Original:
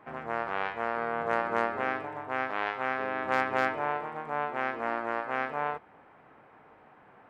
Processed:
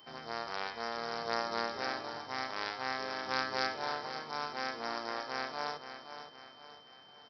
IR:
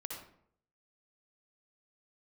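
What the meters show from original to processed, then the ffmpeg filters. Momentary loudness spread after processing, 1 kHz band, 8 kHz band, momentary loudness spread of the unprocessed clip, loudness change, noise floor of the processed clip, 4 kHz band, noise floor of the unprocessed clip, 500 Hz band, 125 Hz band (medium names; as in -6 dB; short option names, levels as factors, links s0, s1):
15 LU, -6.5 dB, no reading, 6 LU, -5.5 dB, -57 dBFS, +9.0 dB, -57 dBFS, -7.5 dB, -7.0 dB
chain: -af "highpass=56,aemphasis=mode=production:type=50kf,bandreject=f=71.98:t=h:w=4,bandreject=f=143.96:t=h:w=4,bandreject=f=215.94:t=h:w=4,bandreject=f=287.92:t=h:w=4,bandreject=f=359.9:t=h:w=4,bandreject=f=431.88:t=h:w=4,bandreject=f=503.86:t=h:w=4,bandreject=f=575.84:t=h:w=4,bandreject=f=647.82:t=h:w=4,bandreject=f=719.8:t=h:w=4,bandreject=f=791.78:t=h:w=4,bandreject=f=863.76:t=h:w=4,bandreject=f=935.74:t=h:w=4,bandreject=f=1007.72:t=h:w=4,bandreject=f=1079.7:t=h:w=4,bandreject=f=1151.68:t=h:w=4,bandreject=f=1223.66:t=h:w=4,bandreject=f=1295.64:t=h:w=4,bandreject=f=1367.62:t=h:w=4,bandreject=f=1439.6:t=h:w=4,bandreject=f=1511.58:t=h:w=4,bandreject=f=1583.56:t=h:w=4,bandreject=f=1655.54:t=h:w=4,bandreject=f=1727.52:t=h:w=4,bandreject=f=1799.5:t=h:w=4,aresample=11025,acrusher=bits=4:mode=log:mix=0:aa=0.000001,aresample=44100,aexciter=amount=11.8:drive=1.1:freq=4200,aeval=exprs='val(0)+0.00355*sin(2*PI*3100*n/s)':c=same,aecho=1:1:518|1036|1554|2072|2590:0.316|0.142|0.064|0.0288|0.013,volume=0.422"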